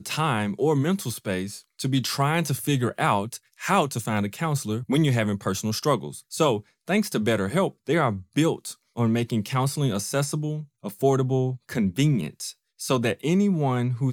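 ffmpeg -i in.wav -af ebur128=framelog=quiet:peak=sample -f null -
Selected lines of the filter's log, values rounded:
Integrated loudness:
  I:         -24.9 LUFS
  Threshold: -35.1 LUFS
Loudness range:
  LRA:         1.1 LU
  Threshold: -45.2 LUFS
  LRA low:   -25.8 LUFS
  LRA high:  -24.7 LUFS
Sample peak:
  Peak:       -8.1 dBFS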